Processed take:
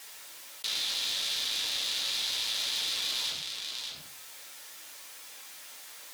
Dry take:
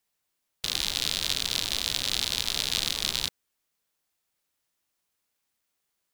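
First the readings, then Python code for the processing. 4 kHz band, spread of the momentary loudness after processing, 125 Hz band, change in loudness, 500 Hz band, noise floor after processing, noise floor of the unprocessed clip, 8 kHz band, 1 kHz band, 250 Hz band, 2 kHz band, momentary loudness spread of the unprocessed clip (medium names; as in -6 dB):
-2.0 dB, 16 LU, under -15 dB, -3.0 dB, -6.0 dB, -48 dBFS, -80 dBFS, -3.0 dB, -3.5 dB, -11.5 dB, -2.0 dB, 4 LU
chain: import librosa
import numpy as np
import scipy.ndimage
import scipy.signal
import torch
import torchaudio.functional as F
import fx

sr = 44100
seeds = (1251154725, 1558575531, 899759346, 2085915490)

p1 = fx.room_shoebox(x, sr, seeds[0], volume_m3=120.0, walls='furnished', distance_m=2.2)
p2 = fx.vibrato(p1, sr, rate_hz=6.6, depth_cents=38.0)
p3 = fx.highpass(p2, sr, hz=1200.0, slope=6)
p4 = fx.high_shelf(p3, sr, hz=9500.0, db=-4.5)
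p5 = p4 + fx.echo_single(p4, sr, ms=597, db=-20.5, dry=0)
p6 = np.clip(p5, -10.0 ** (-17.5 / 20.0), 10.0 ** (-17.5 / 20.0))
p7 = fx.env_flatten(p6, sr, amount_pct=70)
y = p7 * librosa.db_to_amplitude(-7.0)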